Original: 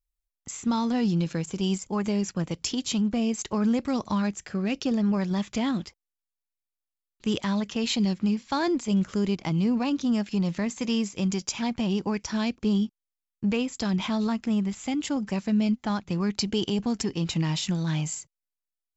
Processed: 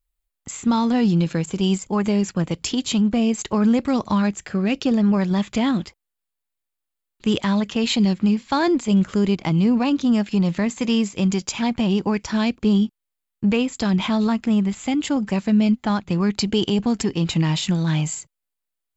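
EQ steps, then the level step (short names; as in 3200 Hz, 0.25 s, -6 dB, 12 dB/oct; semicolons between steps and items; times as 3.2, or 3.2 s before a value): bell 5700 Hz -7 dB 0.44 oct; +6.5 dB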